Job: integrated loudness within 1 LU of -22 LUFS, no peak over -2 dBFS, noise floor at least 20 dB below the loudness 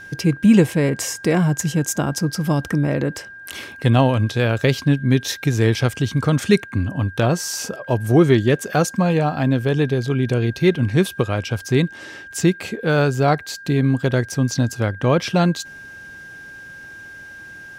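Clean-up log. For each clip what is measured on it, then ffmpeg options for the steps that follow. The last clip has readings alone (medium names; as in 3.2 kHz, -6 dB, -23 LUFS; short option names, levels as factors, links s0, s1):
steady tone 1.6 kHz; tone level -36 dBFS; loudness -19.5 LUFS; peak level -2.0 dBFS; loudness target -22.0 LUFS
-> -af "bandreject=f=1600:w=30"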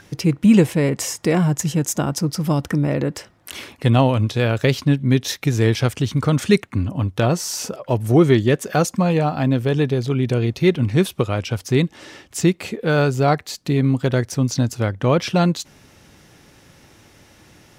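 steady tone not found; loudness -19.5 LUFS; peak level -2.0 dBFS; loudness target -22.0 LUFS
-> -af "volume=0.75"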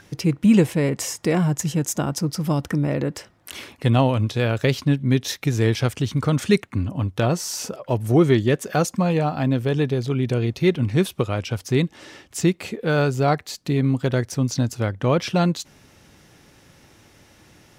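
loudness -22.0 LUFS; peak level -4.5 dBFS; noise floor -54 dBFS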